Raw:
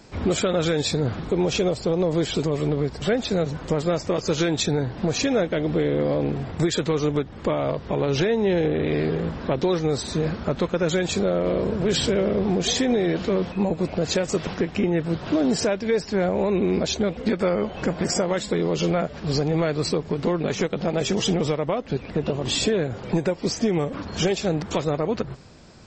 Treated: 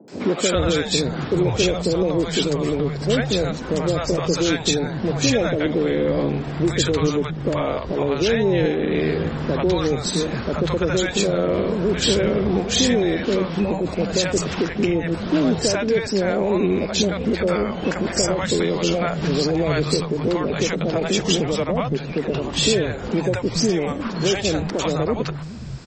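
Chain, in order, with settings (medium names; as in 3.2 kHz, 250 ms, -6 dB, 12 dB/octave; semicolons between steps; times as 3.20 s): in parallel at +2 dB: peak limiter -20.5 dBFS, peak gain reduction 10 dB; on the sum: three bands offset in time mids, highs, lows 80/420 ms, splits 170/640 Hz; 18.54–20.00 s: three bands compressed up and down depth 70%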